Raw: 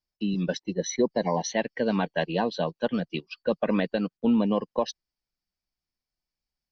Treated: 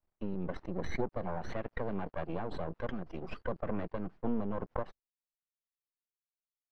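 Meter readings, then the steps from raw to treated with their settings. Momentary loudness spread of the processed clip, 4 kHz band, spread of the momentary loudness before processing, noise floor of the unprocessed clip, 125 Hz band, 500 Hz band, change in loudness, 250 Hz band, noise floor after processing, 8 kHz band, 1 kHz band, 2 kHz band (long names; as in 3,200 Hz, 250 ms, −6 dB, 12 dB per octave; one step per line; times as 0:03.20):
5 LU, −20.0 dB, 6 LU, below −85 dBFS, −7.5 dB, −11.5 dB, −11.5 dB, −12.0 dB, below −85 dBFS, can't be measured, −9.5 dB, −11.5 dB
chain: half-wave rectification
low-pass filter 1,300 Hz 12 dB per octave
noise gate with hold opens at −49 dBFS
background raised ahead of every attack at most 27 dB per second
level −6.5 dB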